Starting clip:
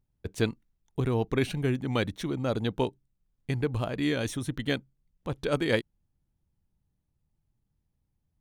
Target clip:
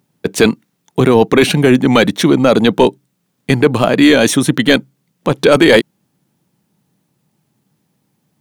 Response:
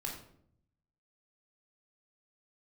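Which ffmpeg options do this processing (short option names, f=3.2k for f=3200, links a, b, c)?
-af "highpass=f=160:w=0.5412,highpass=f=160:w=1.3066,apsyclip=23.5dB,volume=-1.5dB"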